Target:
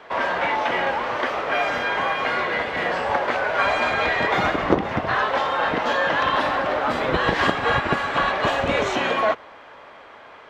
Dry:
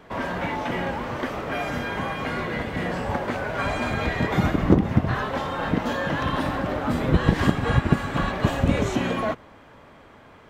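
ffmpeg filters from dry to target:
-filter_complex "[0:a]acrossover=split=430 5800:gain=0.126 1 0.158[a][b][c];[a][b][c]amix=inputs=3:normalize=0,volume=7.5dB"

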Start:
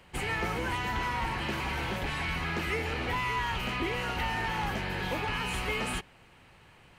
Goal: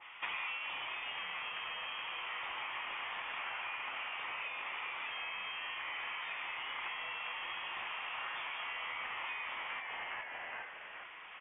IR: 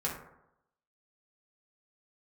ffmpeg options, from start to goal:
-filter_complex "[0:a]highpass=1.3k,asetrate=26989,aresample=44100,equalizer=f=2.8k:w=3.5:g=12,asplit=2[a][b];[b]asplit=4[c][d][e][f];[c]adelay=414,afreqshift=140,volume=-5.5dB[g];[d]adelay=828,afreqshift=280,volume=-14.6dB[h];[e]adelay=1242,afreqshift=420,volume=-23.7dB[i];[f]adelay=1656,afreqshift=560,volume=-32.9dB[j];[g][h][i][j]amix=inputs=4:normalize=0[k];[a][k]amix=inputs=2:normalize=0,acompressor=threshold=-44dB:ratio=10,lowpass=f=3.2k:t=q:w=0.5098,lowpass=f=3.2k:t=q:w=0.6013,lowpass=f=3.2k:t=q:w=0.9,lowpass=f=3.2k:t=q:w=2.563,afreqshift=-3800,adynamicequalizer=threshold=0.001:dfrequency=1900:dqfactor=0.7:tfrequency=1900:tqfactor=0.7:attack=5:release=100:ratio=0.375:range=3.5:mode=cutabove:tftype=highshelf,volume=9.5dB"

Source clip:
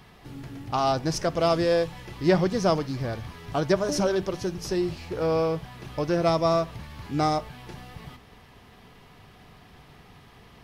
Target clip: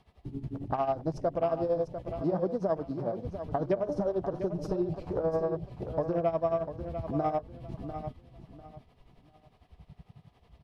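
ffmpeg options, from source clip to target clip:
-filter_complex "[0:a]tremolo=f=11:d=0.75,equalizer=f=630:t=o:w=0.67:g=7,equalizer=f=1.6k:t=o:w=0.67:g=-6,equalizer=f=6.3k:t=o:w=0.67:g=-4,afwtdn=0.0126,acompressor=threshold=-35dB:ratio=3,asettb=1/sr,asplit=3[a][b][c];[a]atrim=end=2.224[d];[b]atrim=start=2.22:end=3.25,asetpts=PTS-STARTPTS,afade=t=in:d=0.004:c=qsin,afade=t=out:st=1.026:d=0.004:c=qsin,highpass=f=150:w=0.5412,highpass=f=150:w=1.3066[e];[c]atrim=start=3.246[f];[d][e]acrossfade=d=0.004:c1=hsin:c2=qsin[g];[g][f]acrossfade=d=0.004:c1=qsin:c2=hsin,asettb=1/sr,asplit=3[h][i][j];[h]atrim=end=4.494[k];[i]atrim=start=4.49:end=5.1,asetpts=PTS-STARTPTS,afade=t=in:d=0.004:c=qsin,afade=t=out:st=0.606:d=0.004:c=qsin,aecho=1:1:6.4:0.65,atrim=end_sample=26901[l];[j]atrim=start=5.096[m];[k][l]acrossfade=d=0.004:c1=hsin:c2=qsin[n];[n][m]acrossfade=d=0.004:c1=qsin:c2=hsin,lowpass=10k,aecho=1:1:697|1394|2091:0.316|0.0791|0.0198,volume=5dB"

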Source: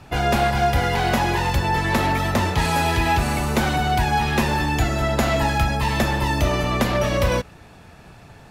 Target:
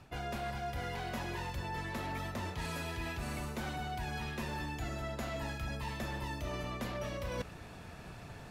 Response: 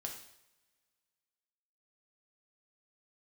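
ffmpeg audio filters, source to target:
-af "bandreject=f=830:w=17,areverse,acompressor=threshold=-33dB:ratio=8,areverse,volume=-3.5dB"

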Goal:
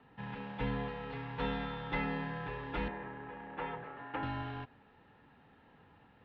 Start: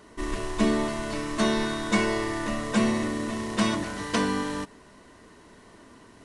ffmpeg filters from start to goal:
-filter_complex "[0:a]asettb=1/sr,asplit=3[a][b][c];[a]atrim=end=2.884[d];[b]atrim=start=2.88:end=4.23,asetpts=PTS-STARTPTS,afade=t=in:d=0.004:c=qsin,afade=t=out:st=1.346:d=0.004:c=qsin,acrossover=split=390 2500:gain=0.0794 1 0.0794[e][f][g];[e][f][g]amix=inputs=3:normalize=0[h];[c]atrim=start=4.226[i];[d][h]acrossfade=d=0.004:c1=hsin:c2=qsin[j];[j][i]acrossfade=d=0.004:c1=qsin:c2=hsin,highpass=f=270:t=q:w=0.5412,highpass=f=270:t=q:w=1.307,lowpass=f=3.5k:t=q:w=0.5176,lowpass=f=3.5k:t=q:w=0.7071,lowpass=f=3.5k:t=q:w=1.932,afreqshift=-170,volume=-9dB"

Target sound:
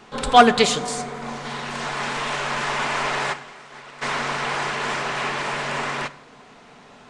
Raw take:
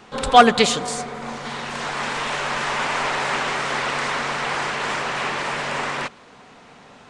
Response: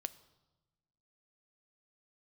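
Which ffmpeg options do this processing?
-filter_complex "[0:a]asplit=3[a][b][c];[a]afade=t=out:st=3.32:d=0.02[d];[b]agate=range=-33dB:threshold=-12dB:ratio=3:detection=peak,afade=t=in:st=3.32:d=0.02,afade=t=out:st=4.01:d=0.02[e];[c]afade=t=in:st=4.01:d=0.02[f];[d][e][f]amix=inputs=3:normalize=0[g];[1:a]atrim=start_sample=2205,asetrate=70560,aresample=44100[h];[g][h]afir=irnorm=-1:irlink=0,volume=5.5dB"

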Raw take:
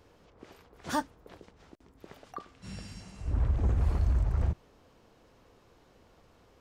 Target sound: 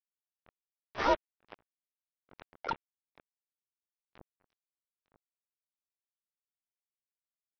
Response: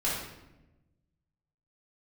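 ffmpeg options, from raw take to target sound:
-filter_complex "[0:a]tiltshelf=f=850:g=9,agate=range=-33dB:threshold=-45dB:ratio=3:detection=peak,atempo=0.87,equalizer=f=380:w=1.4:g=-12.5,asoftclip=type=hard:threshold=-20dB,acompressor=threshold=-32dB:ratio=16,highpass=f=450:t=q:w=0.5412,highpass=f=450:t=q:w=1.307,lowpass=f=2.1k:t=q:w=0.5176,lowpass=f=2.1k:t=q:w=0.7071,lowpass=f=2.1k:t=q:w=1.932,afreqshift=-260,acontrast=76,aresample=8000,acrusher=bits=5:mix=0:aa=0.5,aresample=44100,asplit=3[a][b][c];[b]asetrate=29433,aresample=44100,atempo=1.49831,volume=-15dB[d];[c]asetrate=66075,aresample=44100,atempo=0.66742,volume=0dB[e];[a][d][e]amix=inputs=3:normalize=0,volume=3dB"

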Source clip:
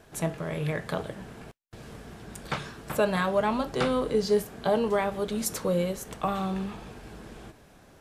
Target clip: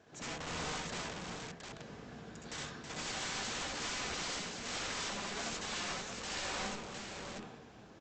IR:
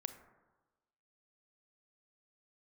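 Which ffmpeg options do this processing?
-af "highpass=100,aresample=16000,aeval=exprs='(mod(31.6*val(0)+1,2)-1)/31.6':c=same,aresample=44100,aecho=1:1:64|68|81|323|710:0.531|0.668|0.596|0.447|0.631,volume=-8.5dB" -ar 48000 -c:a libopus -b:a 64k

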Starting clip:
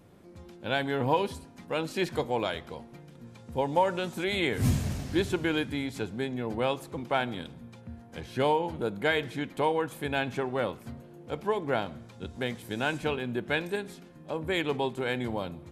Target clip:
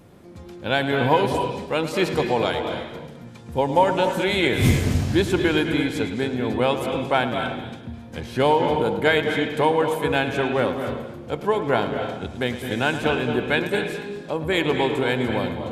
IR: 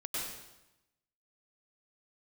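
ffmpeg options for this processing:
-filter_complex "[0:a]asplit=2[a][b];[1:a]atrim=start_sample=2205,lowpass=5.9k,adelay=108[c];[b][c]afir=irnorm=-1:irlink=0,volume=-7.5dB[d];[a][d]amix=inputs=2:normalize=0,volume=7dB"

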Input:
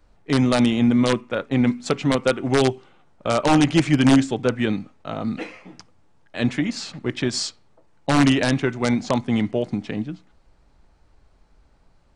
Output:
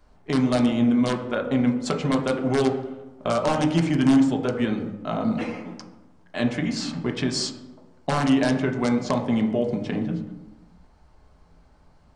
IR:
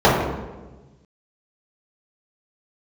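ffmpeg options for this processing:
-filter_complex "[0:a]acompressor=threshold=-25dB:ratio=2.5,asplit=2[a][b];[1:a]atrim=start_sample=2205,asetrate=57330,aresample=44100,highshelf=f=4.6k:g=10.5[c];[b][c]afir=irnorm=-1:irlink=0,volume=-28.5dB[d];[a][d]amix=inputs=2:normalize=0"

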